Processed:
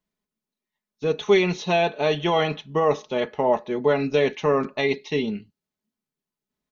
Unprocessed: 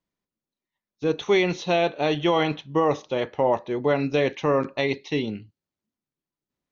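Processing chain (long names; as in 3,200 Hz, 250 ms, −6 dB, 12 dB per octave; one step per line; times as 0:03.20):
comb filter 4.7 ms, depth 57%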